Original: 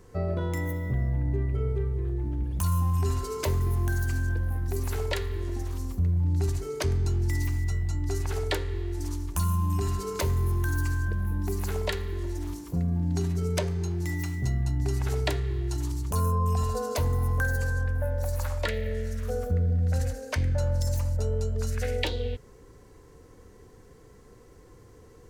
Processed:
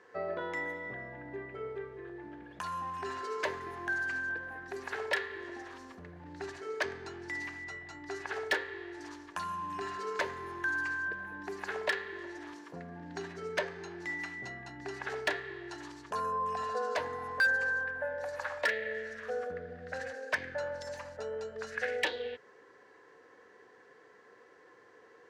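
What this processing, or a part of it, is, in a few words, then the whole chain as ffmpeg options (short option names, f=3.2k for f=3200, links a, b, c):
megaphone: -af "highpass=510,lowpass=3.4k,equalizer=f=1.7k:t=o:w=0.27:g=11.5,asoftclip=type=hard:threshold=-22.5dB"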